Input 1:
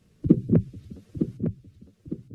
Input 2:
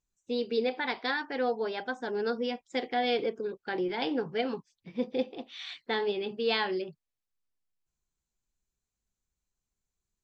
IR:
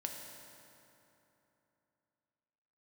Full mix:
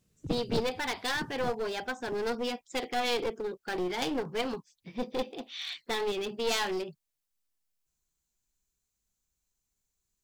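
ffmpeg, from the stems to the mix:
-filter_complex "[0:a]volume=0.251[s0];[1:a]volume=1.06[s1];[s0][s1]amix=inputs=2:normalize=0,aeval=exprs='clip(val(0),-1,0.0237)':c=same,highshelf=f=4500:g=9"

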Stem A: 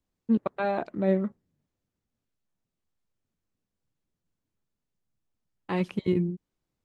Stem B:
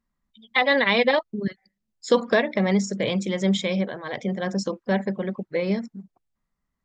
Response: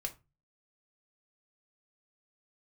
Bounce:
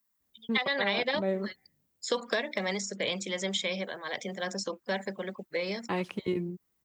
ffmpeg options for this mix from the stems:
-filter_complex "[0:a]adelay=200,volume=1.12[s0];[1:a]aemphasis=mode=production:type=riaa,volume=0.631[s1];[s0][s1]amix=inputs=2:normalize=0,highpass=48,acrossover=split=380|3900[s2][s3][s4];[s2]acompressor=threshold=0.0158:ratio=4[s5];[s3]acompressor=threshold=0.0398:ratio=4[s6];[s4]acompressor=threshold=0.00891:ratio=4[s7];[s5][s6][s7]amix=inputs=3:normalize=0"

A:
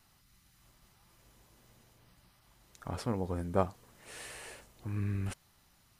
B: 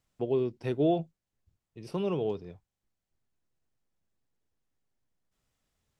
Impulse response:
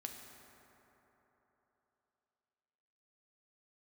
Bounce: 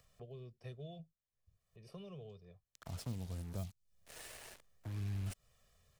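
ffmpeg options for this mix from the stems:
-filter_complex "[0:a]equalizer=f=660:w=7.4:g=10,aphaser=in_gain=1:out_gain=1:delay=2.5:decay=0.23:speed=1.3:type=triangular,acrusher=bits=6:mix=0:aa=0.5,volume=0.562,asplit=2[s0][s1];[1:a]acompressor=mode=upward:threshold=0.00708:ratio=2.5,aecho=1:1:1.7:0.89,volume=0.188[s2];[s1]apad=whole_len=264673[s3];[s2][s3]sidechaincompress=threshold=0.00631:ratio=8:attack=8.5:release=251[s4];[s0][s4]amix=inputs=2:normalize=0,acrossover=split=190|3000[s5][s6][s7];[s6]acompressor=threshold=0.00251:ratio=10[s8];[s5][s8][s7]amix=inputs=3:normalize=0"

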